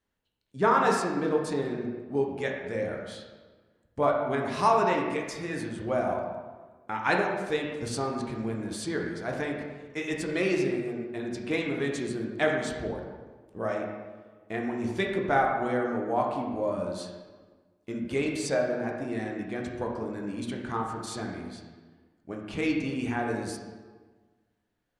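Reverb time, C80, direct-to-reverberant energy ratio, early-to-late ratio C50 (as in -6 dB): 1.4 s, 5.0 dB, -0.5 dB, 3.0 dB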